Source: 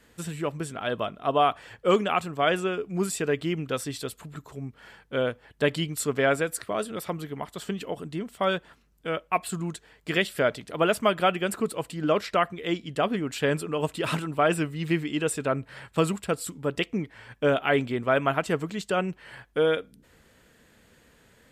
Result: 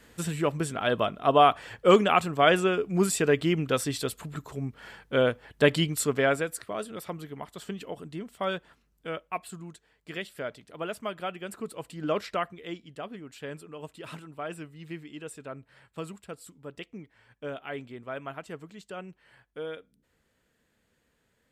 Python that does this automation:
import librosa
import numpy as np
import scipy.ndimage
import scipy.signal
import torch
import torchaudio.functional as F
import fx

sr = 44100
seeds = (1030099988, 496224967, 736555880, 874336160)

y = fx.gain(x, sr, db=fx.line((5.84, 3.0), (6.63, -5.0), (9.09, -5.0), (9.65, -11.5), (11.37, -11.5), (12.19, -4.0), (13.06, -14.0)))